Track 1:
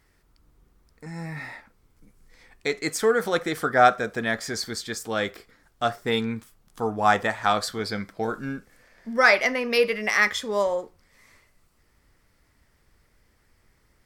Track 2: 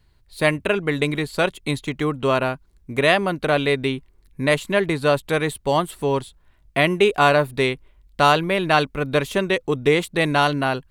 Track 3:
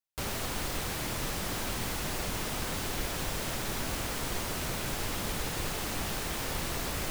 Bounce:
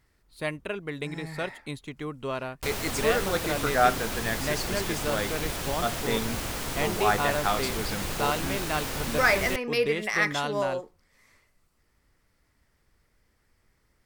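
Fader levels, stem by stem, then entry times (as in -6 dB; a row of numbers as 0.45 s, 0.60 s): -5.0 dB, -12.5 dB, +1.5 dB; 0.00 s, 0.00 s, 2.45 s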